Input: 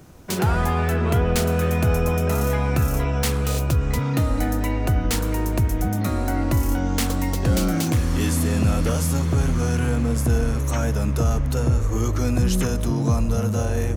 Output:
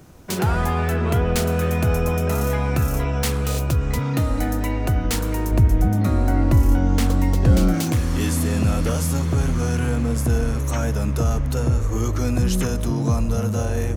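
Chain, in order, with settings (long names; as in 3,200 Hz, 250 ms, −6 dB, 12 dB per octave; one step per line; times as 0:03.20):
0:05.51–0:07.74: spectral tilt −1.5 dB per octave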